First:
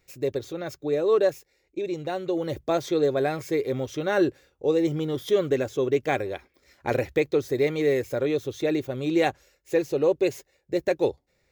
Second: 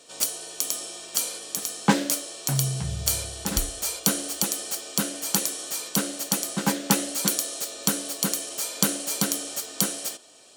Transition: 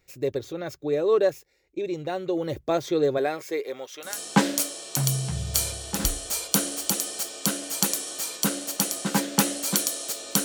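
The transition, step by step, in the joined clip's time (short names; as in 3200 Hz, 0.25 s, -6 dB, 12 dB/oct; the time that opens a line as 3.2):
first
3.17–4.19 HPF 240 Hz -> 1200 Hz
4.1 switch to second from 1.62 s, crossfade 0.18 s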